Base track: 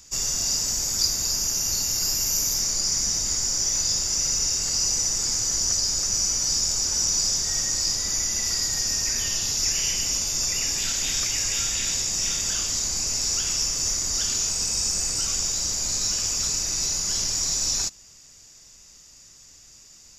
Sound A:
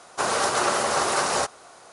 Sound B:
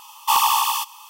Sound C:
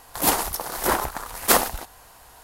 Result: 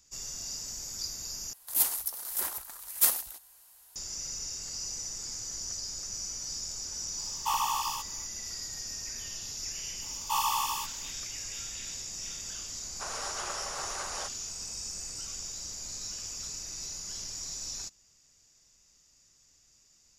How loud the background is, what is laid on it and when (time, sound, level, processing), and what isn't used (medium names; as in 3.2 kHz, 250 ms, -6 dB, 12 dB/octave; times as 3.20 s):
base track -14 dB
1.53 s: replace with C -5.5 dB + pre-emphasis filter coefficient 0.9
7.18 s: add B -10.5 dB + treble shelf 2.5 kHz -6 dB
10.02 s: add B -9.5 dB + harmonic-percussive split percussive -8 dB
12.82 s: add A -15.5 dB + frequency weighting A